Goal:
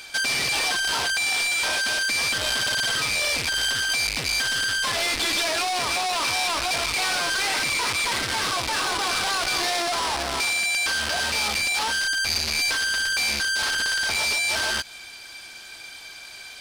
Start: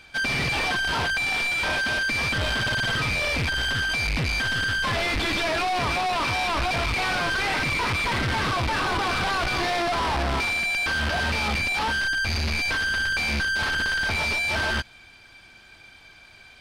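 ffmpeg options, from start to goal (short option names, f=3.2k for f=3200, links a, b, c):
-filter_complex "[0:a]asplit=2[a][b];[b]asoftclip=type=hard:threshold=-38dB,volume=-7dB[c];[a][c]amix=inputs=2:normalize=0,acompressor=threshold=-28dB:ratio=6,bass=f=250:g=-11,treble=f=4k:g=13,volume=2.5dB"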